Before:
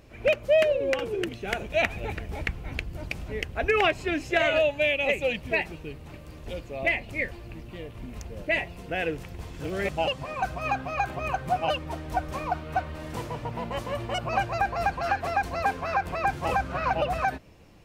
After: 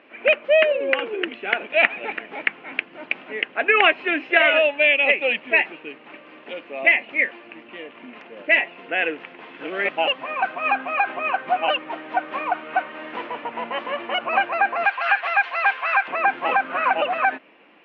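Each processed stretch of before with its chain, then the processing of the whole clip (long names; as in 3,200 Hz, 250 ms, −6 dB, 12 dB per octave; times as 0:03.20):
0:14.85–0:16.08: high-pass filter 650 Hz + spectral tilt +3.5 dB per octave
whole clip: elliptic band-pass filter 250–3,000 Hz, stop band 50 dB; parametric band 1,900 Hz +9.5 dB 2.1 octaves; level +1.5 dB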